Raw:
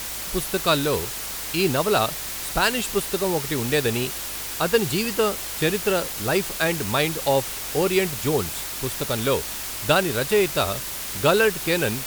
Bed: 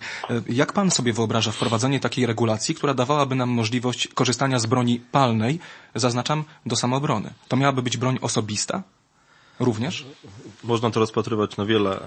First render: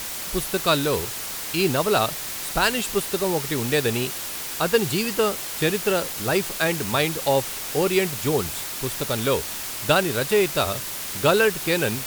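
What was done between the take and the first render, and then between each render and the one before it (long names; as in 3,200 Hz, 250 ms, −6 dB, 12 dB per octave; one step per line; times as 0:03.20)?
hum removal 50 Hz, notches 2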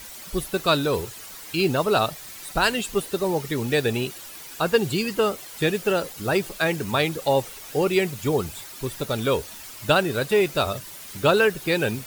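broadband denoise 11 dB, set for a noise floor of −32 dBFS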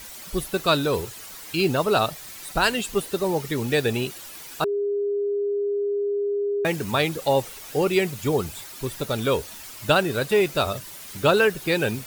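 0:04.64–0:06.65: beep over 406 Hz −21.5 dBFS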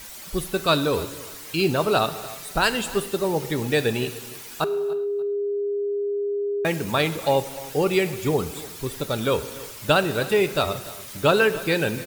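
repeating echo 292 ms, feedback 26%, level −19 dB
reverb whose tail is shaped and stops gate 430 ms falling, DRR 12 dB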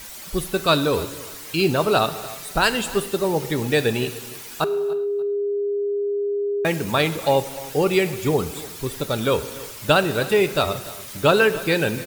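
level +2 dB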